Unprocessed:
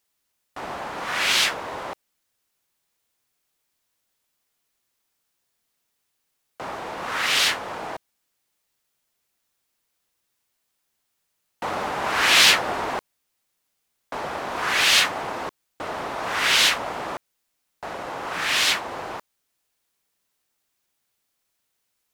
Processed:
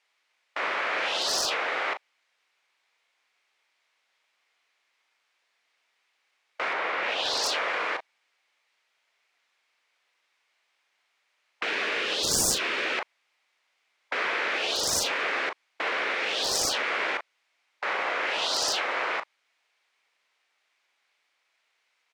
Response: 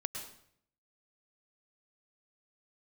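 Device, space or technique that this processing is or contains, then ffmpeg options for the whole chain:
megaphone: -filter_complex "[0:a]highpass=630,lowpass=3800,equalizer=frequency=2200:width_type=o:width=0.46:gain=6.5,asoftclip=type=hard:threshold=-11dB,asplit=2[link_01][link_02];[link_02]adelay=37,volume=-11dB[link_03];[link_01][link_03]amix=inputs=2:normalize=0,asettb=1/sr,asplit=3[link_04][link_05][link_06];[link_04]atrim=end=6.734[link_07];[link_05]atrim=start=6.73:end=7.44,asetpts=PTS-STARTPTS,afade=type=in:duration=0.004:curve=qsin,afade=type=out:start_time=0.706:duration=0.004:curve=qsin,aemphasis=mode=reproduction:type=cd[link_08];[link_06]atrim=start=7.436[link_09];[link_07][link_08]acrossfade=duration=0.004:curve1=hsin:curve2=qsin[link_10];[link_10][link_09]acrossfade=duration=0.004:curve1=qsin:curve2=hsin,afftfilt=real='re*lt(hypot(re,im),0.0794)':imag='im*lt(hypot(re,im),0.0794)':win_size=1024:overlap=0.75,volume=7.5dB"

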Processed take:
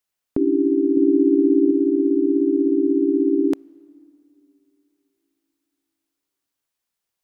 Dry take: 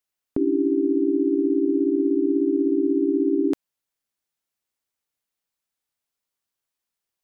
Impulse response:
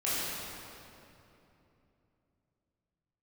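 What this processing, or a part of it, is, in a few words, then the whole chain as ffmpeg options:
keyed gated reverb: -filter_complex "[0:a]asettb=1/sr,asplit=3[link_01][link_02][link_03];[link_01]atrim=end=0.974[link_04];[link_02]atrim=start=0.97:end=1.71,asetpts=PTS-STARTPTS,afade=type=in:duration=0.004:curve=qsin,afade=type=out:start_time=0.736:duration=0.004:curve=qsin,lowshelf=frequency=350:gain=4.5[link_05];[link_03]atrim=start=1.706[link_06];[link_04][link_05]acrossfade=duration=0.004:curve1=hsin:curve2=qsin[link_07];[link_07][link_06]acrossfade=duration=0.004:curve1=qsin:curve2=hsin,asplit=3[link_08][link_09][link_10];[1:a]atrim=start_sample=2205[link_11];[link_09][link_11]afir=irnorm=-1:irlink=0[link_12];[link_10]apad=whole_len=318877[link_13];[link_12][link_13]sidechaingate=range=-27dB:threshold=-13dB:ratio=16:detection=peak,volume=-10dB[link_14];[link_08][link_14]amix=inputs=2:normalize=0,volume=2.5dB"

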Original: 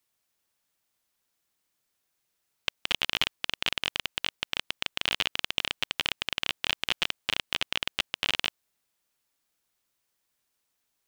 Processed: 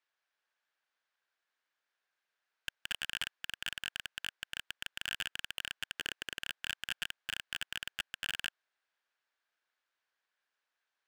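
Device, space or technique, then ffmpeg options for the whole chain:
megaphone: -filter_complex "[0:a]asettb=1/sr,asplit=3[link_01][link_02][link_03];[link_01]atrim=end=5.954[link_04];[link_02]atrim=start=5.95:end=6.39,asetpts=PTS-STARTPTS,afade=type=in:duration=0.004:curve=qsin,afade=type=out:start_time=0.436:duration=0.004:curve=qsin,highpass=frequency=320:width=0.5412,highpass=frequency=320:width=1.3066[link_05];[link_03]atrim=start=6.386[link_06];[link_04][link_05]acrossfade=duration=0.004:curve1=hsin:curve2=qsin[link_07];[link_07][link_06]acrossfade=duration=0.004:curve1=qsin:curve2=hsin,highpass=540,lowpass=3600,equalizer=frequency=1600:width_type=o:width=0.35:gain=8.5,asoftclip=type=hard:threshold=-21.5dB,volume=-3dB"

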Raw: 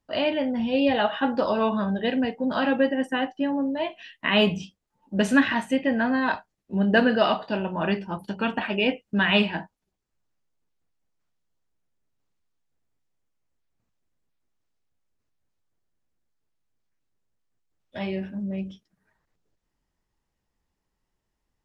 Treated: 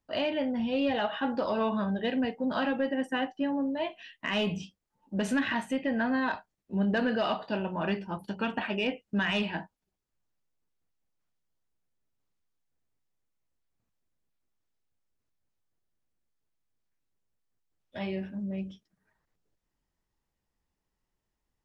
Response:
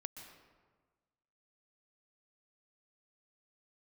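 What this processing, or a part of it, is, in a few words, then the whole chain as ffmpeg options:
soft clipper into limiter: -af "asoftclip=type=tanh:threshold=-11dB,alimiter=limit=-16.5dB:level=0:latency=1:release=89,volume=-4dB"

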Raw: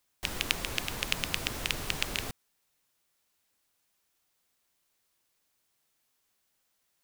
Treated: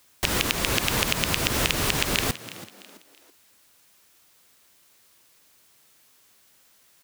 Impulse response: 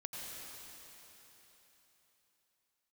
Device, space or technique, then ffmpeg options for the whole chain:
mastering chain: -filter_complex "[0:a]highpass=frequency=51:poles=1,equalizer=frequency=770:width_type=o:width=0.4:gain=-2.5,acompressor=threshold=-34dB:ratio=2,asoftclip=type=tanh:threshold=-11.5dB,alimiter=level_in=17.5dB:limit=-1dB:release=50:level=0:latency=1,asplit=4[link_01][link_02][link_03][link_04];[link_02]adelay=330,afreqshift=80,volume=-16dB[link_05];[link_03]adelay=660,afreqshift=160,volume=-24.6dB[link_06];[link_04]adelay=990,afreqshift=240,volume=-33.3dB[link_07];[link_01][link_05][link_06][link_07]amix=inputs=4:normalize=0,volume=-1dB"

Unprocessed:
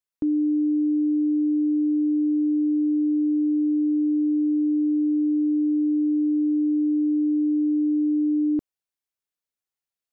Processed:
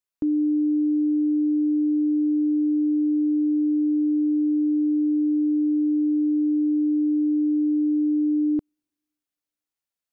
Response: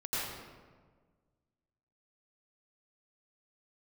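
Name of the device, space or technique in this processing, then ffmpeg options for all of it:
keyed gated reverb: -filter_complex "[0:a]asplit=3[link_01][link_02][link_03];[1:a]atrim=start_sample=2205[link_04];[link_02][link_04]afir=irnorm=-1:irlink=0[link_05];[link_03]apad=whole_len=446305[link_06];[link_05][link_06]sidechaingate=range=-52dB:threshold=-18dB:ratio=16:detection=peak,volume=-6.5dB[link_07];[link_01][link_07]amix=inputs=2:normalize=0"

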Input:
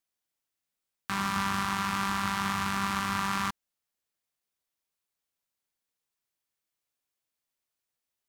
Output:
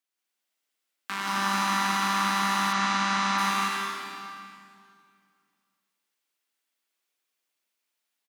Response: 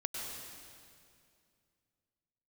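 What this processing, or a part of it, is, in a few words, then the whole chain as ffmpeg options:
stadium PA: -filter_complex "[0:a]highpass=frequency=220:width=0.5412,highpass=frequency=220:width=1.3066,equalizer=frequency=2500:width_type=o:width=1.9:gain=4.5,aecho=1:1:177.8|256.6:0.891|0.501[link_01];[1:a]atrim=start_sample=2205[link_02];[link_01][link_02]afir=irnorm=-1:irlink=0,asplit=3[link_03][link_04][link_05];[link_03]afade=type=out:start_time=2.72:duration=0.02[link_06];[link_04]lowpass=frequency=7500:width=0.5412,lowpass=frequency=7500:width=1.3066,afade=type=in:start_time=2.72:duration=0.02,afade=type=out:start_time=3.37:duration=0.02[link_07];[link_05]afade=type=in:start_time=3.37:duration=0.02[link_08];[link_06][link_07][link_08]amix=inputs=3:normalize=0,volume=-1.5dB"

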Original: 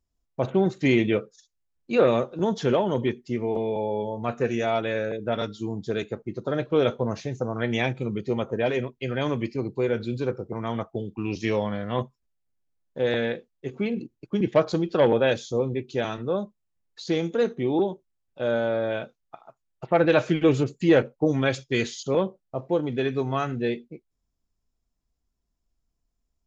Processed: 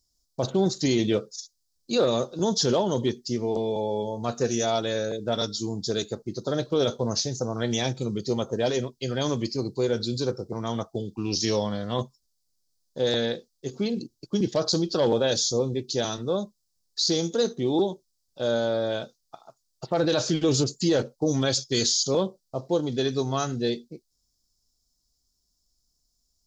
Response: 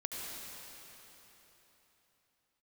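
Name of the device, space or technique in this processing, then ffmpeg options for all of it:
over-bright horn tweeter: -af "highshelf=frequency=3400:width_type=q:width=3:gain=13,alimiter=limit=-14dB:level=0:latency=1:release=15"

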